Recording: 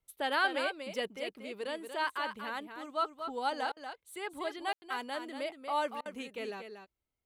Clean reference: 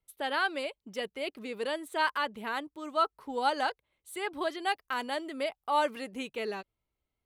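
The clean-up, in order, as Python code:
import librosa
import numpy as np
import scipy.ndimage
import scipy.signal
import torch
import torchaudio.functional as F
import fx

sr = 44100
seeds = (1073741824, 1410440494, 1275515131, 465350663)

y = fx.fix_ambience(x, sr, seeds[0], print_start_s=6.73, print_end_s=7.23, start_s=4.73, end_s=4.82)
y = fx.fix_interpolate(y, sr, at_s=(3.72, 6.01), length_ms=45.0)
y = fx.fix_echo_inverse(y, sr, delay_ms=236, level_db=-8.0)
y = fx.fix_level(y, sr, at_s=1.16, step_db=5.0)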